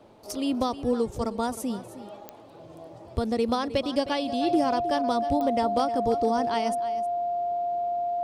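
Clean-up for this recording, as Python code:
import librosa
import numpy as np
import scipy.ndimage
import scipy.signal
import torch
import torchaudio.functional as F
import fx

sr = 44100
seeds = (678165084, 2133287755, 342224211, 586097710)

y = fx.fix_declip(x, sr, threshold_db=-14.5)
y = fx.fix_declick_ar(y, sr, threshold=10.0)
y = fx.notch(y, sr, hz=700.0, q=30.0)
y = fx.fix_echo_inverse(y, sr, delay_ms=312, level_db=-14.0)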